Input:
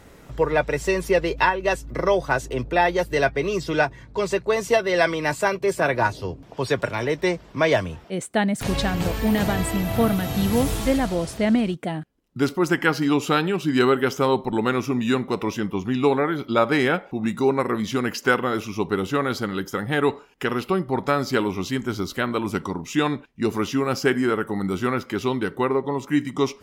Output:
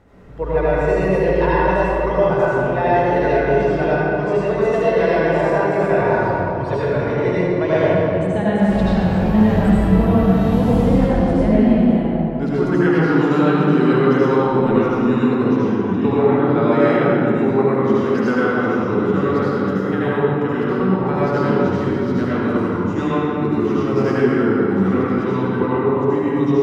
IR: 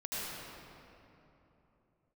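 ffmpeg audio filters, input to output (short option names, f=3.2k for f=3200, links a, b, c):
-filter_complex "[0:a]lowpass=f=1.1k:p=1[a];[1:a]atrim=start_sample=2205[b];[a][b]afir=irnorm=-1:irlink=0,volume=2dB"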